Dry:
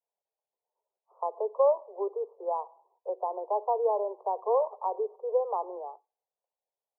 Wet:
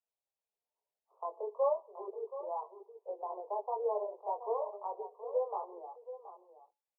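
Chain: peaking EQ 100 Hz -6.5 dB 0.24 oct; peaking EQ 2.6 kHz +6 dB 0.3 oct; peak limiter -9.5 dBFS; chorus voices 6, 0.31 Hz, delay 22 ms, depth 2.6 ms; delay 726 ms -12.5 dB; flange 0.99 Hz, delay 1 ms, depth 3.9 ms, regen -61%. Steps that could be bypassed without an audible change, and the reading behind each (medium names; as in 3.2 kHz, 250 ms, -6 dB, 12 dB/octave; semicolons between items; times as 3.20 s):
peaking EQ 100 Hz: input has nothing below 340 Hz; peaking EQ 2.6 kHz: input has nothing above 1.2 kHz; peak limiter -9.5 dBFS: peak at its input -14.0 dBFS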